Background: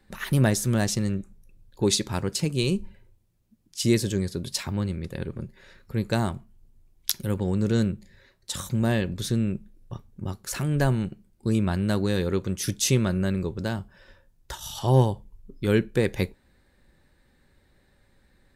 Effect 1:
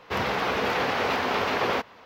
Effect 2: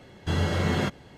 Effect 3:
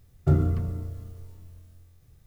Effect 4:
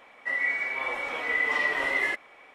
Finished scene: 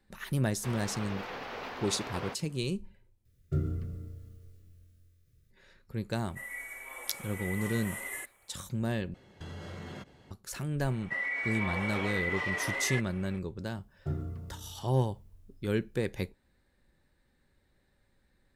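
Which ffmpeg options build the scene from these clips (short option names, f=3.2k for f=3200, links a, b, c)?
-filter_complex "[3:a]asplit=2[a][b];[4:a]asplit=2[c][d];[0:a]volume=-8.5dB[e];[a]asuperstop=centerf=870:order=4:qfactor=1.2[f];[c]aexciter=amount=12.4:drive=9.7:freq=7.6k[g];[2:a]acompressor=threshold=-31dB:ratio=6:attack=3.2:release=140:knee=1:detection=peak[h];[d]alimiter=level_in=0.5dB:limit=-24dB:level=0:latency=1:release=65,volume=-0.5dB[i];[b]highpass=57[j];[e]asplit=3[k][l][m];[k]atrim=end=3.254[n];[f]atrim=end=2.26,asetpts=PTS-STARTPTS,volume=-9.5dB[o];[l]atrim=start=5.506:end=9.144[p];[h]atrim=end=1.17,asetpts=PTS-STARTPTS,volume=-8.5dB[q];[m]atrim=start=10.306[r];[1:a]atrim=end=2.05,asetpts=PTS-STARTPTS,volume=-15dB,afade=t=in:d=0.004:c=hsin,afade=t=out:st=2.046:d=0.004:c=hsin,adelay=530[s];[g]atrim=end=2.54,asetpts=PTS-STARTPTS,volume=-14.5dB,afade=t=in:d=0.004:c=hsin,afade=t=out:st=2.536:d=0.004:c=hsin,adelay=269010S[t];[i]atrim=end=2.54,asetpts=PTS-STARTPTS,volume=-1.5dB,afade=t=in:d=0.004:c=hsin,afade=t=out:st=2.536:d=0.004:c=hsin,adelay=10850[u];[j]atrim=end=2.26,asetpts=PTS-STARTPTS,volume=-13dB,afade=t=in:d=0.004:c=hsin,afade=t=out:st=2.256:d=0.004:c=hsin,adelay=13790[v];[n][o]acrossfade=d=0.004:c1=hsin:c2=hsin[w];[w][p]acrossfade=d=0.004:c1=hsin:c2=hsin[x];[x][q]acrossfade=d=0.004:c1=hsin:c2=hsin[y];[y][r]acrossfade=d=0.004:c1=hsin:c2=hsin[z];[z][s][t][u][v]amix=inputs=5:normalize=0"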